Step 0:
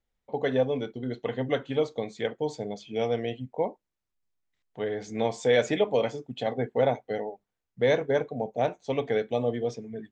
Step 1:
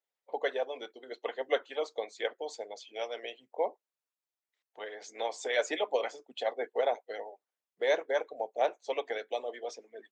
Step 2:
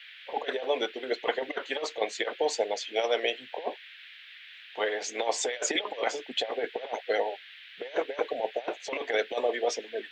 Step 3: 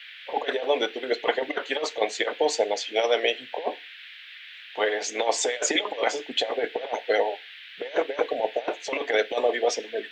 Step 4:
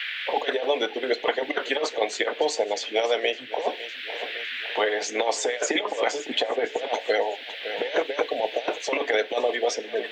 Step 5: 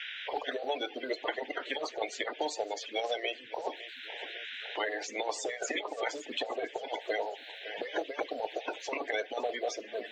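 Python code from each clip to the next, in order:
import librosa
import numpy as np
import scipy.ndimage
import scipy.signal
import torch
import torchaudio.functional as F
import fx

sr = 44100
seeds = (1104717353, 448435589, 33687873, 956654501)

y1 = scipy.signal.sosfilt(scipy.signal.butter(4, 400.0, 'highpass', fs=sr, output='sos'), x)
y1 = fx.hpss(y1, sr, part='harmonic', gain_db=-14)
y2 = fx.over_compress(y1, sr, threshold_db=-36.0, ratio=-0.5)
y2 = fx.dmg_noise_band(y2, sr, seeds[0], low_hz=1600.0, high_hz=3600.0, level_db=-57.0)
y2 = y2 * 10.0 ** (8.0 / 20.0)
y3 = fx.rev_fdn(y2, sr, rt60_s=0.32, lf_ratio=1.0, hf_ratio=1.0, size_ms=20.0, drr_db=16.0)
y3 = y3 * 10.0 ** (4.5 / 20.0)
y4 = fx.echo_feedback(y3, sr, ms=557, feedback_pct=36, wet_db=-19.5)
y4 = fx.band_squash(y4, sr, depth_pct=70)
y5 = fx.spec_quant(y4, sr, step_db=30)
y5 = y5 * 10.0 ** (-9.0 / 20.0)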